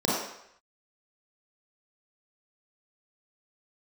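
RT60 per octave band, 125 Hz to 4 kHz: 0.55, 0.55, 0.70, 0.75, 0.80, 0.70 s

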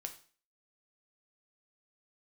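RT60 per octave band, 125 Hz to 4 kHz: 0.45, 0.45, 0.40, 0.40, 0.40, 0.40 s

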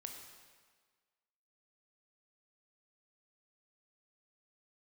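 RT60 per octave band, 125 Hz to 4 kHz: 1.3, 1.5, 1.5, 1.6, 1.5, 1.4 s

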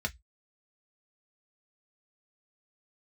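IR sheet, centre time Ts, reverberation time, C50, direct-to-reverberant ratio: 4 ms, 0.10 s, 26.5 dB, 3.0 dB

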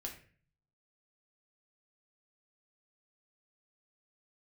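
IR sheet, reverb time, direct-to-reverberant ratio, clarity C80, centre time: 0.45 s, 0.0 dB, 12.5 dB, 20 ms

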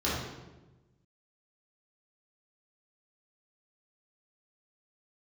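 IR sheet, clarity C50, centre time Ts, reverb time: -0.5 dB, 77 ms, 1.1 s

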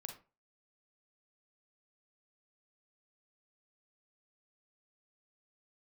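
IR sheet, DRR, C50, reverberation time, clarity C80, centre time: 4.0 dB, 7.5 dB, 0.35 s, 14.5 dB, 16 ms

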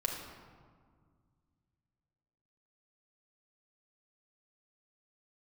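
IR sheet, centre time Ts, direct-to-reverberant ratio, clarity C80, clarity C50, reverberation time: 59 ms, -0.5 dB, 5.0 dB, 3.0 dB, 1.9 s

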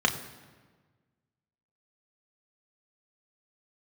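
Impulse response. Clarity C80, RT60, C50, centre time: 13.0 dB, 1.4 s, 12.0 dB, 16 ms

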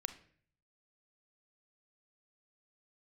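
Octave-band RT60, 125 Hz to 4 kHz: 0.85, 0.65, 0.60, 0.45, 0.55, 0.45 s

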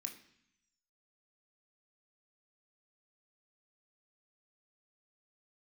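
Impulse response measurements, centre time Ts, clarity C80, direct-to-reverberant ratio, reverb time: 17 ms, 13.5 dB, 2.5 dB, 0.70 s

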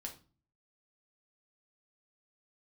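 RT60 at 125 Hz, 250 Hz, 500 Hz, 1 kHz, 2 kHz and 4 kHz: 0.65, 0.55, 0.40, 0.35, 0.30, 0.30 s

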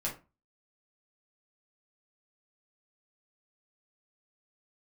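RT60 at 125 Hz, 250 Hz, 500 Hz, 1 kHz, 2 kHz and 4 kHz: 0.35, 0.35, 0.30, 0.30, 0.25, 0.20 s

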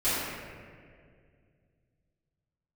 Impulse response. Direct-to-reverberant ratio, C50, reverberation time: -16.0 dB, -3.0 dB, 2.1 s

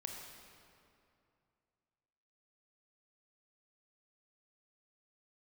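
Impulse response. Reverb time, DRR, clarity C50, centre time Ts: 2.6 s, 1.0 dB, 2.0 dB, 83 ms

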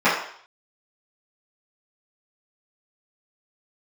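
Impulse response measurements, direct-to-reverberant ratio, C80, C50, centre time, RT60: -14.0 dB, 7.0 dB, 3.5 dB, 44 ms, 0.55 s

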